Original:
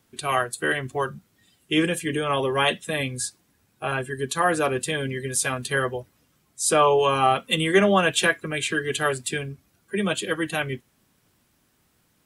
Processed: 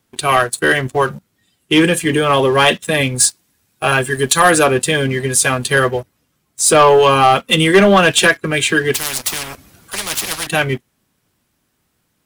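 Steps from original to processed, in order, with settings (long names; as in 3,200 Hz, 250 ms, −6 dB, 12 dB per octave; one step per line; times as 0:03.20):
0:03.20–0:04.64: high-shelf EQ 2,400 Hz +8 dB
leveller curve on the samples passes 2
0:08.94–0:10.47: every bin compressed towards the loudest bin 10 to 1
level +3.5 dB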